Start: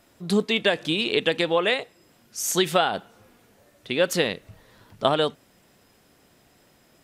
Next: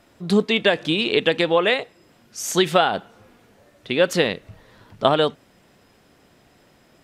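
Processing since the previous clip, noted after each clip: high shelf 7000 Hz -10 dB; gain +4 dB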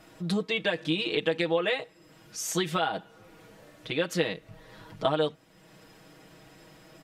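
compressor 1.5:1, threshold -48 dBFS, peak gain reduction 13 dB; comb 6.3 ms, depth 92%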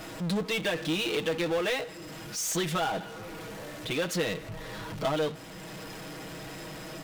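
power-law curve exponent 0.5; gain -8 dB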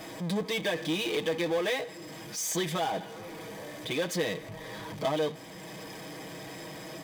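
notch comb 1400 Hz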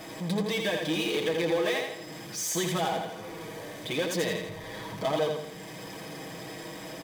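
feedback echo 83 ms, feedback 44%, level -4.5 dB

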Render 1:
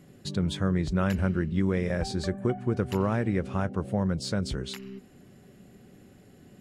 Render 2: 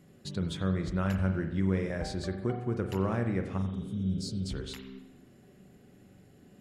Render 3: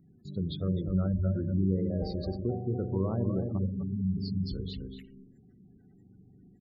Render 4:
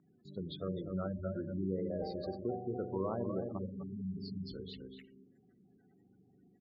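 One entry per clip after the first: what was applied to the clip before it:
spectral repair 3.61–4.41, 230–3800 Hz after; on a send at -6 dB: reverb RT60 0.90 s, pre-delay 42 ms; on the sum: gain -5 dB
echo 0.251 s -5.5 dB; spectral gate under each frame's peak -20 dB strong; envelope phaser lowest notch 520 Hz, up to 1800 Hz, full sweep at -31 dBFS
band-pass 1100 Hz, Q 0.59; gain +1.5 dB

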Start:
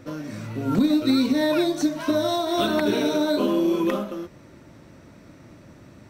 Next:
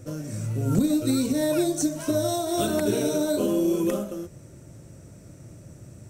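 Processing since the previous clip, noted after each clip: ten-band EQ 125 Hz +5 dB, 250 Hz -8 dB, 1000 Hz -11 dB, 2000 Hz -8 dB, 4000 Hz -11 dB, 8000 Hz +11 dB; gain +3.5 dB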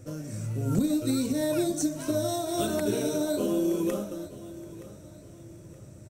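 feedback echo 0.921 s, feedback 38%, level -17 dB; gain -3.5 dB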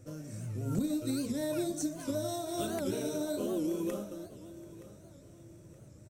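record warp 78 rpm, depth 160 cents; gain -6.5 dB

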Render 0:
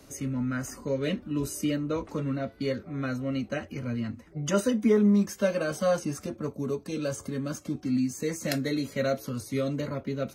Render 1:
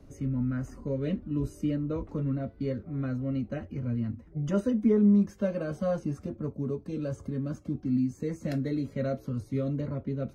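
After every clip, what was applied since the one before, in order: tilt -3.5 dB/oct; gain -7.5 dB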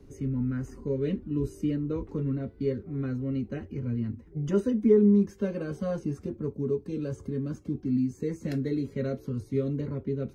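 thirty-one-band EQ 400 Hz +9 dB, 630 Hz -11 dB, 1250 Hz -4 dB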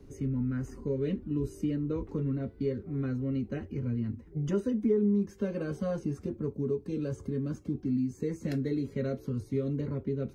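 compressor 2:1, threshold -28 dBFS, peak gain reduction 7 dB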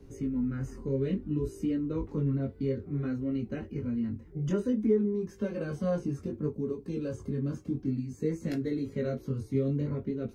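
chorus 0.58 Hz, delay 17.5 ms, depth 5.1 ms; gain +3.5 dB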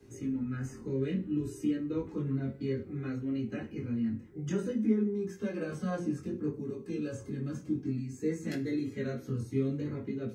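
reverb RT60 0.40 s, pre-delay 3 ms, DRR 0 dB

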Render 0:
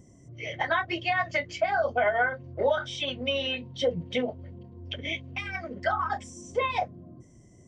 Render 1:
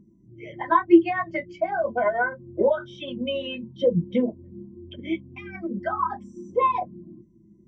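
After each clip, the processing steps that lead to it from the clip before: hum 50 Hz, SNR 27 dB; small resonant body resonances 210/330/990 Hz, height 18 dB, ringing for 80 ms; spectral expander 1.5:1; gain +4 dB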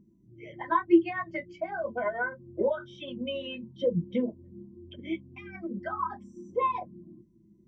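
dynamic EQ 730 Hz, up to -5 dB, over -39 dBFS, Q 3.5; gain -5.5 dB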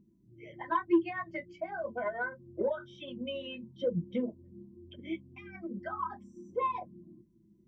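soft clip -11.5 dBFS, distortion -21 dB; gain -4 dB

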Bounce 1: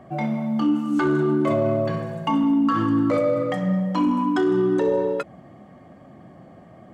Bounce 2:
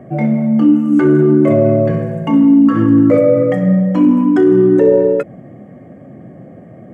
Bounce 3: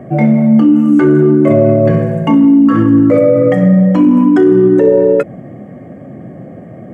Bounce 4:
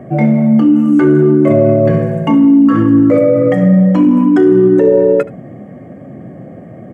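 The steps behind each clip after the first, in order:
graphic EQ 125/250/500/1000/2000/4000 Hz +9/+6/+10/-7/+7/-12 dB; gain +2 dB
limiter -7 dBFS, peak gain reduction 5.5 dB; gain +5.5 dB
echo 75 ms -19 dB; gain -1 dB

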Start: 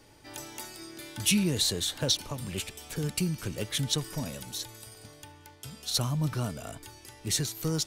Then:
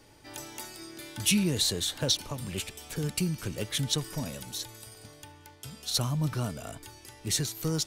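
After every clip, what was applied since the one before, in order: nothing audible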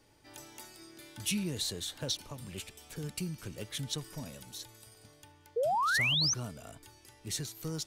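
painted sound rise, 5.56–6.34, 440–6400 Hz -21 dBFS; gain -8 dB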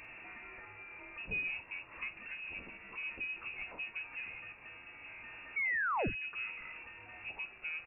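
zero-crossing step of -39 dBFS; inverted band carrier 2700 Hz; doubler 47 ms -13 dB; gain -5.5 dB

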